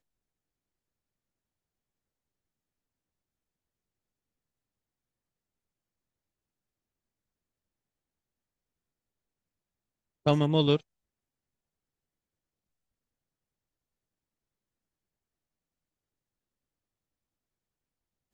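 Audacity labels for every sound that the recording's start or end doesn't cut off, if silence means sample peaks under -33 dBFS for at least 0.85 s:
10.260000	10.770000	sound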